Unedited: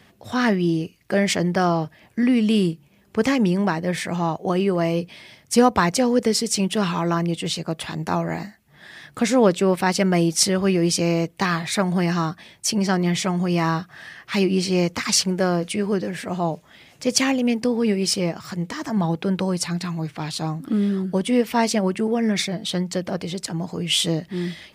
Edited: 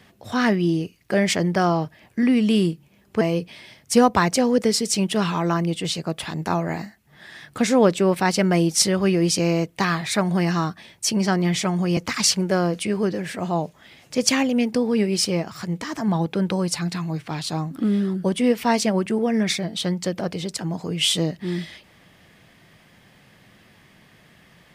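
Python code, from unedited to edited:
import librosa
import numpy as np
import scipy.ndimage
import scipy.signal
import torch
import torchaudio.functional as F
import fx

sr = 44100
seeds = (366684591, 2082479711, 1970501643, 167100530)

y = fx.edit(x, sr, fx.cut(start_s=3.21, length_s=1.61),
    fx.cut(start_s=13.58, length_s=1.28), tone=tone)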